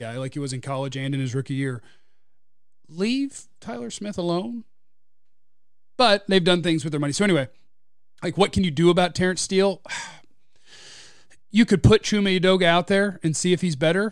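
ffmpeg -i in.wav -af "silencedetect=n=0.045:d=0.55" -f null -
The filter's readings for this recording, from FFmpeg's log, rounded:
silence_start: 1.76
silence_end: 2.99 | silence_duration: 1.23
silence_start: 4.57
silence_end: 5.99 | silence_duration: 1.42
silence_start: 7.45
silence_end: 8.23 | silence_duration: 0.79
silence_start: 10.06
silence_end: 11.54 | silence_duration: 1.48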